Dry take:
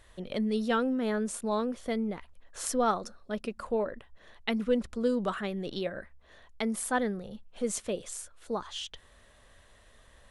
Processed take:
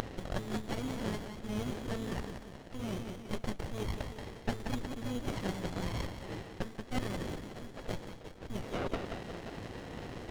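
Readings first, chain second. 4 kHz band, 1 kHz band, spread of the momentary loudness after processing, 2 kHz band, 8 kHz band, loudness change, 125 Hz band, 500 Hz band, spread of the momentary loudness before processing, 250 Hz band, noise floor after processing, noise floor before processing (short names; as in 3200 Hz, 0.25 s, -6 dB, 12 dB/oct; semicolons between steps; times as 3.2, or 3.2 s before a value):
-4.5 dB, -8.0 dB, 7 LU, -5.5 dB, -12.5 dB, -7.5 dB, +5.5 dB, -9.0 dB, 12 LU, -6.5 dB, -50 dBFS, -59 dBFS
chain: G.711 law mismatch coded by mu; tilt +4.5 dB/oct; reverse; compressor 4:1, threshold -41 dBFS, peak gain reduction 21.5 dB; reverse; AM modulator 110 Hz, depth 20%; Butterworth band-stop 1300 Hz, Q 3.5; on a send: split-band echo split 340 Hz, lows 0.124 s, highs 0.179 s, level -7.5 dB; on the sum: inverted band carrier 3800 Hz; running maximum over 33 samples; gain +12.5 dB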